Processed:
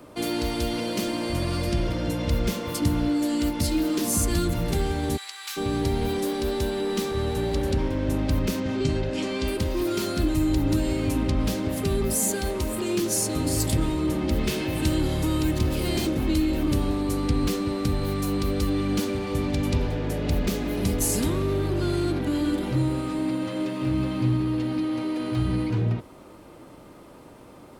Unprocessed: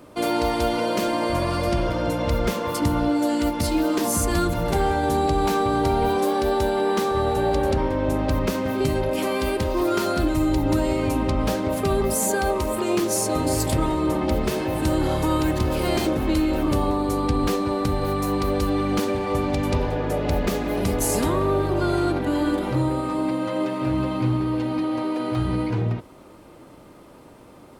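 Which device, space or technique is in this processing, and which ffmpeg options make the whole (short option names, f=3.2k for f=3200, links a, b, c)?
one-band saturation: -filter_complex "[0:a]asettb=1/sr,asplit=3[a][b][c];[a]atrim=end=14.384[d];[b]atrim=start=14.38:end=15.01,asetpts=PTS-STARTPTS,afade=t=in:d=0.004:c=qsin,afade=t=out:st=0.626:d=0.004:c=qsin,equalizer=f=2.5k:t=o:w=1.8:g=5[e];[c]atrim=start=15.006[f];[d][e]acrossfade=d=0.004:c1=hsin:c2=qsin[g];[g][f]acrossfade=d=0.004:c1=qsin:c2=hsin,acrossover=split=380|2200[h][i][j];[i]asoftclip=type=tanh:threshold=-37.5dB[k];[h][k][j]amix=inputs=3:normalize=0,asplit=3[l][m][n];[l]afade=t=out:st=5.16:d=0.02[o];[m]highpass=f=1.2k:w=0.5412,highpass=f=1.2k:w=1.3066,afade=t=in:st=5.16:d=0.02,afade=t=out:st=5.56:d=0.02[p];[n]afade=t=in:st=5.56:d=0.02[q];[o][p][q]amix=inputs=3:normalize=0,asettb=1/sr,asplit=3[r][s][t];[r]atrim=end=8.604[u];[s]atrim=start=8.6:end=9.48,asetpts=PTS-STARTPTS,afade=t=in:d=0.004:c=qsin,afade=t=out:st=0.876:d=0.004:c=qsin,lowpass=f=7.4k:w=0.5412,lowpass=f=7.4k:w=1.3066[v];[t]atrim=start=9.476[w];[u][v]acrossfade=d=0.004:c1=hsin:c2=qsin[x];[x][w]acrossfade=d=0.004:c1=qsin:c2=hsin"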